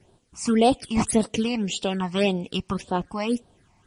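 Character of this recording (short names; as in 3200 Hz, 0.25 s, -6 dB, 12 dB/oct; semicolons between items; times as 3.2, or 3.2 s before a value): phasing stages 8, 1.8 Hz, lowest notch 450–2100 Hz; a quantiser's noise floor 12-bit, dither none; MP3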